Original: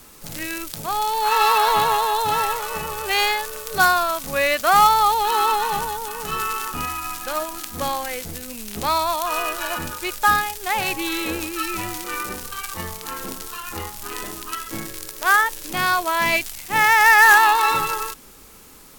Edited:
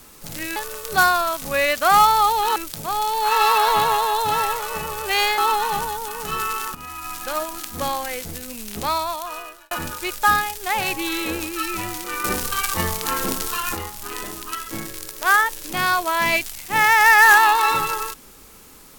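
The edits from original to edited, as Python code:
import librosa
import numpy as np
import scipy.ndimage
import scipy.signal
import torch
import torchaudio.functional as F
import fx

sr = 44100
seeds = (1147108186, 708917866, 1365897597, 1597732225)

y = fx.edit(x, sr, fx.move(start_s=3.38, length_s=2.0, to_s=0.56),
    fx.fade_in_from(start_s=6.75, length_s=0.47, floor_db=-15.0),
    fx.fade_out_span(start_s=8.73, length_s=0.98),
    fx.clip_gain(start_s=12.24, length_s=1.51, db=7.5), tone=tone)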